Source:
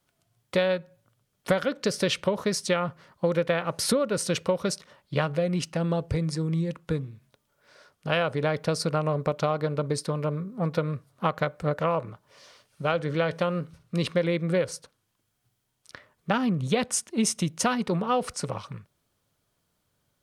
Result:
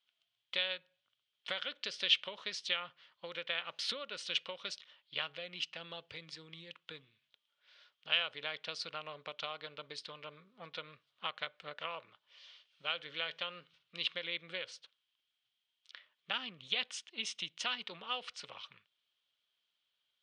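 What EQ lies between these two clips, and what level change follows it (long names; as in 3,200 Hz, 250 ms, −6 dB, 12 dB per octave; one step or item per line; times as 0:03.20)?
resonant band-pass 3,200 Hz, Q 3.7
high-frequency loss of the air 90 metres
+5.5 dB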